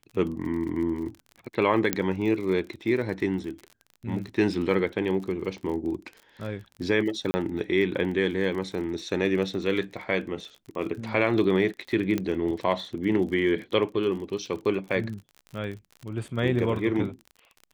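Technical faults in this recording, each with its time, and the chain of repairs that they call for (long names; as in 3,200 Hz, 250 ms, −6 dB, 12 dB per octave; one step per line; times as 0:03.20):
surface crackle 38 per second −35 dBFS
0:01.93: click −6 dBFS
0:07.31–0:07.34: drop-out 30 ms
0:12.18: click −14 dBFS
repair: click removal
repair the gap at 0:07.31, 30 ms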